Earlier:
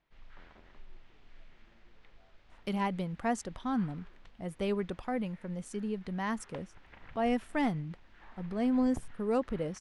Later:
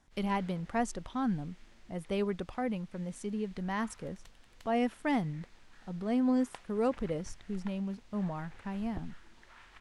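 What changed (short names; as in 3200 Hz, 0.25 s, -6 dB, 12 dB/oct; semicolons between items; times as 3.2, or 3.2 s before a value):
speech: entry -2.50 s; background: remove LPF 3200 Hz 12 dB/oct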